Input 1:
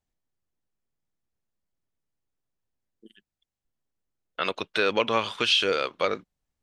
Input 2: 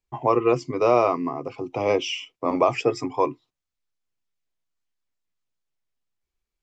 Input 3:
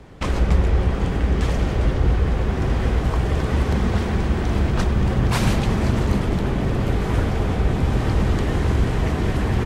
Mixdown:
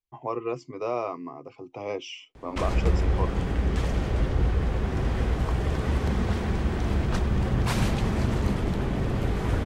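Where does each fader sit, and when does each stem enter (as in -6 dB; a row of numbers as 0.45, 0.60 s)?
off, -10.5 dB, -5.5 dB; off, 0.00 s, 2.35 s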